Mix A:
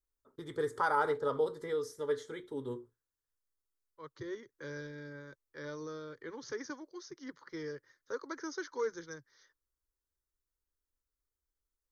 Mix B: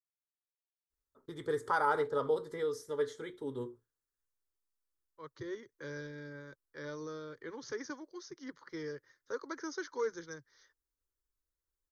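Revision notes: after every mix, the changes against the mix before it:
first voice: entry +0.90 s; second voice: entry +1.20 s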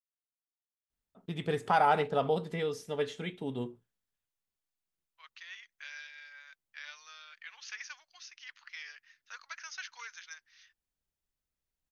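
second voice: add HPF 1300 Hz 24 dB/oct; master: remove fixed phaser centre 710 Hz, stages 6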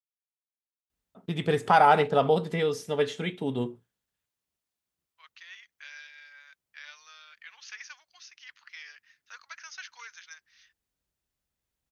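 first voice +6.5 dB; master: add HPF 45 Hz

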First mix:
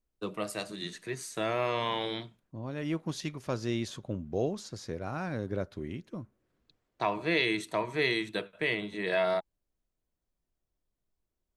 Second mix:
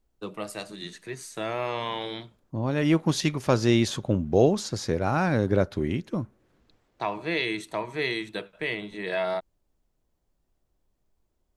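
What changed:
second voice +11.0 dB; master: remove notch 840 Hz, Q 15

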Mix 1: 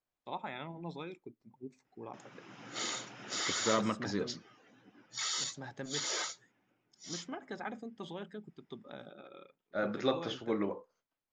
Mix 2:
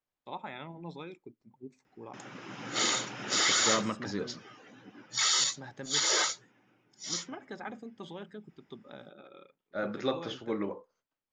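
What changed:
background +9.0 dB; master: add notch 690 Hz, Q 23

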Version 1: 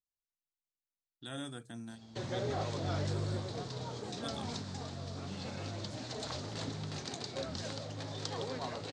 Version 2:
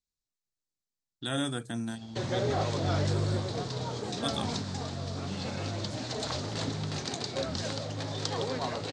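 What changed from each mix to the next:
speech +11.0 dB; background +6.5 dB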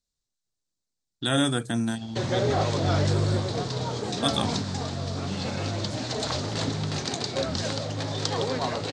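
speech +8.0 dB; background +5.0 dB

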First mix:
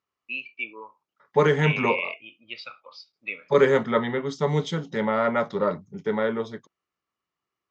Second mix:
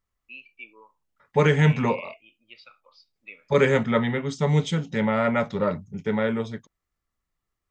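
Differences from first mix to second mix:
first voice -10.5 dB; second voice: remove speaker cabinet 180–6300 Hz, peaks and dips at 230 Hz -3 dB, 380 Hz +4 dB, 1100 Hz +4 dB, 2500 Hz -9 dB

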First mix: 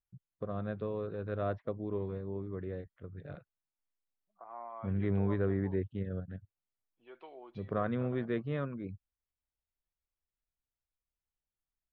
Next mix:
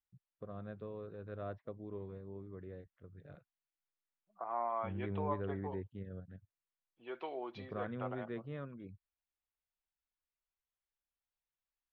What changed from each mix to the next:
first voice -9.0 dB; second voice +8.5 dB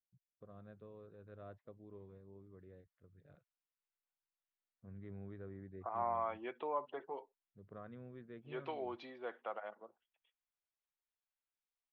first voice -9.5 dB; second voice: entry +1.45 s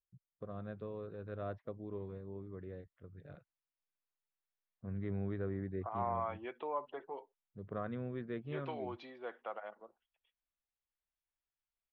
first voice +11.0 dB

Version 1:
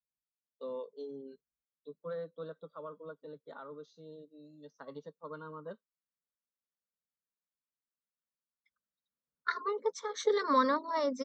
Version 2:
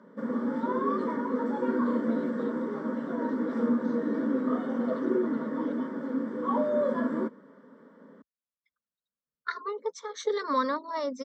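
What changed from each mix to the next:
background: unmuted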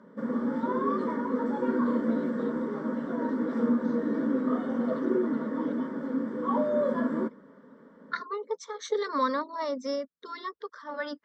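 second voice: entry -1.35 s; background: remove HPF 160 Hz 12 dB/oct

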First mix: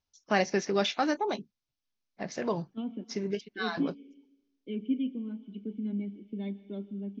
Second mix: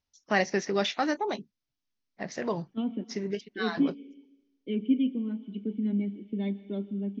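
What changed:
second voice +5.0 dB; master: remove notch 1900 Hz, Q 11

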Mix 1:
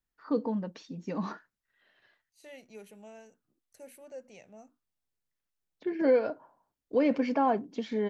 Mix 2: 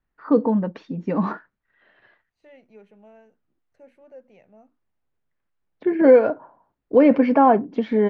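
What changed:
first voice +11.5 dB; master: add LPF 2000 Hz 12 dB/oct

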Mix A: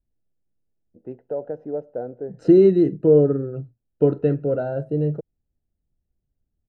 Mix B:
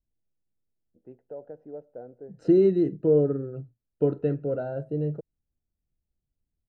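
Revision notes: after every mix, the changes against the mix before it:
first voice -12.0 dB; second voice -6.0 dB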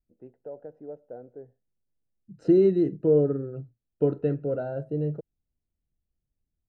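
first voice: entry -0.85 s

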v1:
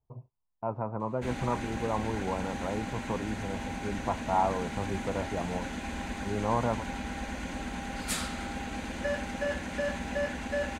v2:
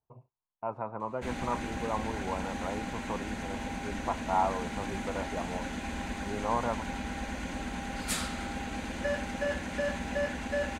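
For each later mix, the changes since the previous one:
speech: add tilt +3 dB/oct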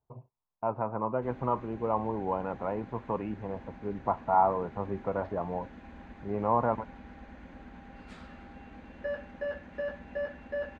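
speech +6.5 dB; first sound -10.5 dB; master: add tape spacing loss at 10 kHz 31 dB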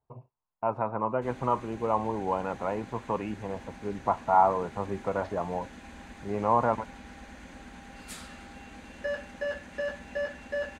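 master: remove tape spacing loss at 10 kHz 31 dB

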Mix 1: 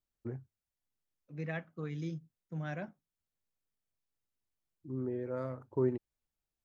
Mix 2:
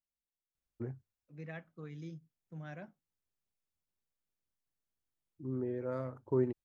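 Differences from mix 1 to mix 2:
first voice: entry +0.55 s; second voice -7.0 dB

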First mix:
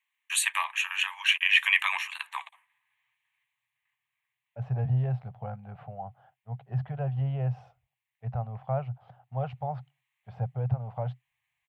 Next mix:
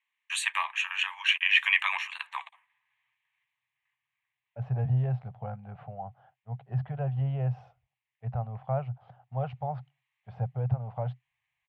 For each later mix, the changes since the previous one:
master: add air absorption 70 m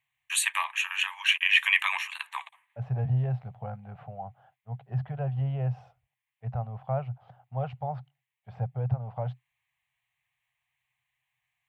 second voice: entry -1.80 s; master: remove air absorption 70 m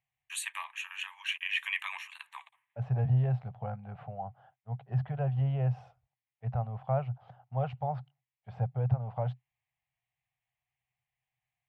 first voice -10.5 dB

